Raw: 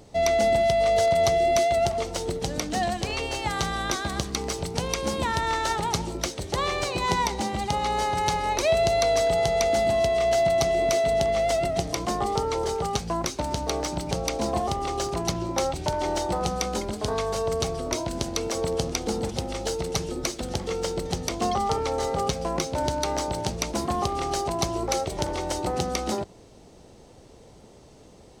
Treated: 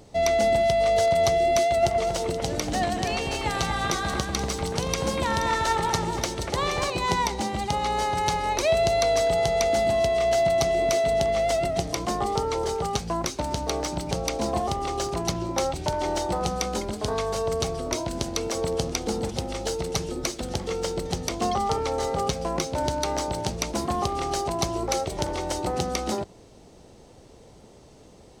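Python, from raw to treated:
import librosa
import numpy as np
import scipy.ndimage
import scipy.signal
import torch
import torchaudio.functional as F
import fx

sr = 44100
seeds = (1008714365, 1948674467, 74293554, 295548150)

y = fx.echo_alternate(x, sr, ms=239, hz=2500.0, feedback_pct=51, wet_db=-4, at=(1.59, 6.9))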